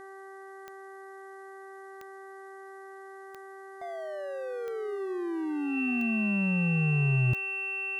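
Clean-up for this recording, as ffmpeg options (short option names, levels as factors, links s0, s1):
-af "adeclick=t=4,bandreject=f=387.6:t=h:w=4,bandreject=f=775.2:t=h:w=4,bandreject=f=1162.8:t=h:w=4,bandreject=f=1550.4:t=h:w=4,bandreject=f=1938:t=h:w=4,bandreject=f=2700:w=30,agate=range=0.0891:threshold=0.0126"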